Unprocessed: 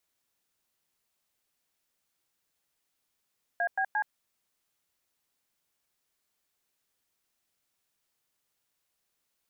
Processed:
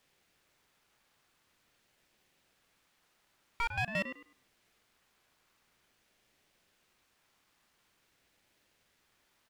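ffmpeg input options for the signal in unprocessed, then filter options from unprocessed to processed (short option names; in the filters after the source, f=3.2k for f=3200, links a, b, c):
-f lavfi -i "aevalsrc='0.0398*clip(min(mod(t,0.175),0.073-mod(t,0.175))/0.002,0,1)*(eq(floor(t/0.175),0)*(sin(2*PI*697*mod(t,0.175))+sin(2*PI*1633*mod(t,0.175)))+eq(floor(t/0.175),1)*(sin(2*PI*770*mod(t,0.175))+sin(2*PI*1633*mod(t,0.175)))+eq(floor(t/0.175),2)*(sin(2*PI*852*mod(t,0.175))+sin(2*PI*1633*mod(t,0.175))))':d=0.525:s=44100"
-filter_complex "[0:a]asplit=2[a][b];[b]highpass=f=720:p=1,volume=26dB,asoftclip=type=tanh:threshold=-21.5dB[c];[a][c]amix=inputs=2:normalize=0,lowpass=f=1.5k:p=1,volume=-6dB,asplit=2[d][e];[e]adelay=102,lowpass=f=860:p=1,volume=-5dB,asplit=2[f][g];[g]adelay=102,lowpass=f=860:p=1,volume=0.34,asplit=2[h][i];[i]adelay=102,lowpass=f=860:p=1,volume=0.34,asplit=2[j][k];[k]adelay=102,lowpass=f=860:p=1,volume=0.34[l];[d][f][h][j][l]amix=inputs=5:normalize=0,aeval=exprs='val(0)*sin(2*PI*790*n/s+790*0.45/0.47*sin(2*PI*0.47*n/s))':c=same"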